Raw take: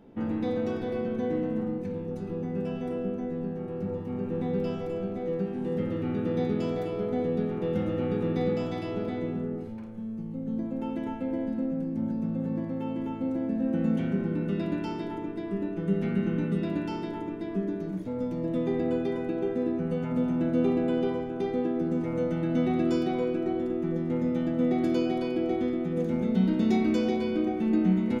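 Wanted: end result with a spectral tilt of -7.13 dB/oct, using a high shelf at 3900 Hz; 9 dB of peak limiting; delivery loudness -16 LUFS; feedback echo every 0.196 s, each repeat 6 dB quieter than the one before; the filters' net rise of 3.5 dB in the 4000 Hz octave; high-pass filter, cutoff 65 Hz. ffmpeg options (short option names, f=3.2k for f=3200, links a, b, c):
-af "highpass=65,highshelf=f=3.9k:g=-5,equalizer=f=4k:t=o:g=7.5,alimiter=limit=-22dB:level=0:latency=1,aecho=1:1:196|392|588|784|980|1176:0.501|0.251|0.125|0.0626|0.0313|0.0157,volume=14dB"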